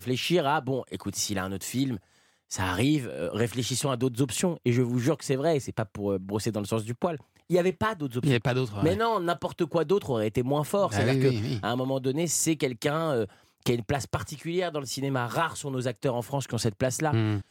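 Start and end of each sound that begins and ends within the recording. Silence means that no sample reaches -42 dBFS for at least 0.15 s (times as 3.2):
2.51–7.21
7.5–13.27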